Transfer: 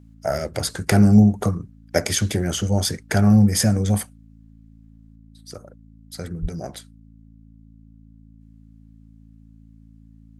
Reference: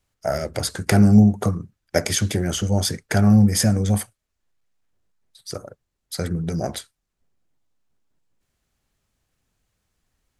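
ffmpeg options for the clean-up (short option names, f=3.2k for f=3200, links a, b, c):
-filter_complex "[0:a]bandreject=f=54.9:t=h:w=4,bandreject=f=109.8:t=h:w=4,bandreject=f=164.7:t=h:w=4,bandreject=f=219.6:t=h:w=4,bandreject=f=274.5:t=h:w=4,asplit=3[a][b][c];[a]afade=t=out:st=6.41:d=0.02[d];[b]highpass=f=140:w=0.5412,highpass=f=140:w=1.3066,afade=t=in:st=6.41:d=0.02,afade=t=out:st=6.53:d=0.02[e];[c]afade=t=in:st=6.53:d=0.02[f];[d][e][f]amix=inputs=3:normalize=0,asetnsamples=n=441:p=0,asendcmd='5.16 volume volume 6.5dB',volume=0dB"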